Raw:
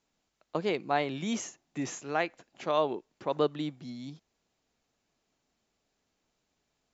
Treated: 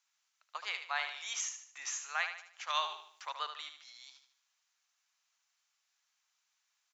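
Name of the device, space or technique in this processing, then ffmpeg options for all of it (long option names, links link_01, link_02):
headphones lying on a table: -filter_complex "[0:a]asettb=1/sr,asplit=3[link_01][link_02][link_03];[link_01]atrim=end=2.704[link_04];[link_02]atrim=start=2.7:end=3.29,asetpts=PTS-STARTPTS,afade=type=in:duration=0.004:curve=qsin,afade=type=out:start_time=0.586:duration=0.004:curve=qsin,highshelf=frequency=2700:gain=8.5[link_05];[link_03]atrim=start=3.286[link_06];[link_04][link_05]acrossfade=duration=0.004:curve1=hsin:curve2=qsin[link_07];[link_07][link_06]acrossfade=duration=0.004:curve1=qsin:curve2=hsin,highpass=frequency=1100:width=0.5412,highpass=frequency=1100:width=1.3066,equalizer=frequency=6000:width_type=o:width=0.31:gain=4.5,aecho=1:1:75|150|225|300|375:0.376|0.154|0.0632|0.0259|0.0106"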